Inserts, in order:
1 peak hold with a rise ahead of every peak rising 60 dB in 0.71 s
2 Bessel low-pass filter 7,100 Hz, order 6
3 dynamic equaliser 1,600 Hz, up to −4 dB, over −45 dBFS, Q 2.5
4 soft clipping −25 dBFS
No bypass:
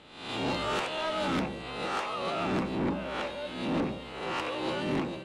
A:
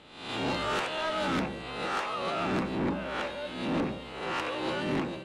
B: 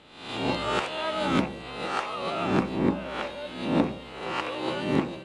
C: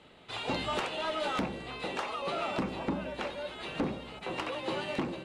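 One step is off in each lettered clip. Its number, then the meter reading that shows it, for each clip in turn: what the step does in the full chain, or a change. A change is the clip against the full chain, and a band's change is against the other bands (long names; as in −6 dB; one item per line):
3, 2 kHz band +1.5 dB
4, distortion level −9 dB
1, 250 Hz band −2.0 dB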